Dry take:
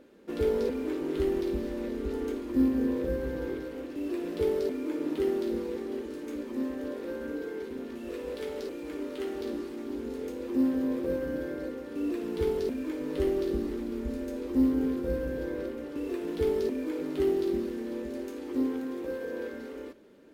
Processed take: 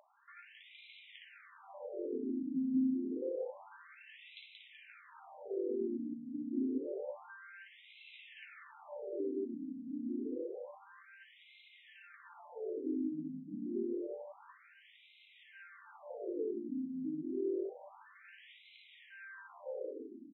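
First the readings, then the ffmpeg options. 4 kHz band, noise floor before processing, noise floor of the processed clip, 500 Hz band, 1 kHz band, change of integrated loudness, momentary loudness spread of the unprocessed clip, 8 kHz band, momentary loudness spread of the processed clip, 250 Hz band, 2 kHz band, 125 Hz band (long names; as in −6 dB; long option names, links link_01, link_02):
−9.0 dB, −41 dBFS, −63 dBFS, −11.5 dB, −10.0 dB, −8.0 dB, 10 LU, can't be measured, 20 LU, −9.5 dB, −7.5 dB, −18.0 dB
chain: -filter_complex "[0:a]acompressor=threshold=-29dB:ratio=6,equalizer=frequency=710:width=1.7:gain=3.5,acrossover=split=210|3000[link_01][link_02][link_03];[link_02]acompressor=threshold=-40dB:ratio=2[link_04];[link_01][link_04][link_03]amix=inputs=3:normalize=0,highshelf=frequency=4200:gain=4,bandreject=frequency=47.91:width_type=h:width=4,bandreject=frequency=95.82:width_type=h:width=4,bandreject=frequency=143.73:width_type=h:width=4,bandreject=frequency=191.64:width_type=h:width=4,bandreject=frequency=239.55:width_type=h:width=4,bandreject=frequency=287.46:width_type=h:width=4,bandreject=frequency=335.37:width_type=h:width=4,bandreject=frequency=383.28:width_type=h:width=4,bandreject=frequency=431.19:width_type=h:width=4,bandreject=frequency=479.1:width_type=h:width=4,bandreject=frequency=527.01:width_type=h:width=4,bandreject=frequency=574.92:width_type=h:width=4,bandreject=frequency=622.83:width_type=h:width=4,bandreject=frequency=670.74:width_type=h:width=4,bandreject=frequency=718.65:width_type=h:width=4,bandreject=frequency=766.56:width_type=h:width=4,bandreject=frequency=814.47:width_type=h:width=4,asplit=2[link_05][link_06];[link_06]aecho=0:1:180|378|595.8|835.4|1099:0.631|0.398|0.251|0.158|0.1[link_07];[link_05][link_07]amix=inputs=2:normalize=0,afftfilt=real='re*between(b*sr/1024,210*pow(2900/210,0.5+0.5*sin(2*PI*0.28*pts/sr))/1.41,210*pow(2900/210,0.5+0.5*sin(2*PI*0.28*pts/sr))*1.41)':imag='im*between(b*sr/1024,210*pow(2900/210,0.5+0.5*sin(2*PI*0.28*pts/sr))/1.41,210*pow(2900/210,0.5+0.5*sin(2*PI*0.28*pts/sr))*1.41)':win_size=1024:overlap=0.75"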